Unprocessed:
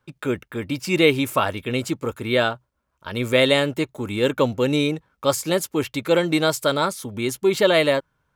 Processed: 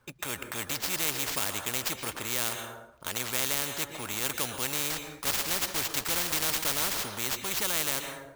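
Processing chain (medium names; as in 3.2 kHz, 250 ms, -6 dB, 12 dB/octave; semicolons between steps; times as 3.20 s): 4.90–7.04 s: block-companded coder 3-bit; level rider gain up to 8.5 dB; sample-rate reducer 10 kHz, jitter 0%; plate-style reverb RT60 0.65 s, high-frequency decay 0.75×, pre-delay 105 ms, DRR 17.5 dB; spectrum-flattening compressor 4:1; trim -8.5 dB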